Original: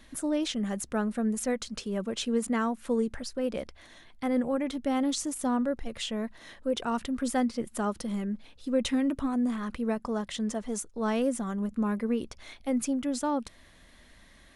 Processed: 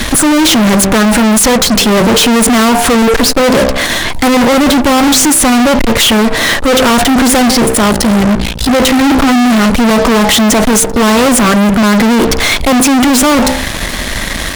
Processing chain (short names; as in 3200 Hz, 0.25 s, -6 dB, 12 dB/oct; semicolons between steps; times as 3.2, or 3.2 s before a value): de-hum 64.66 Hz, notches 15; 7.75–9.02 AM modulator 57 Hz, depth 80%; fuzz box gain 52 dB, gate -58 dBFS; gain +6.5 dB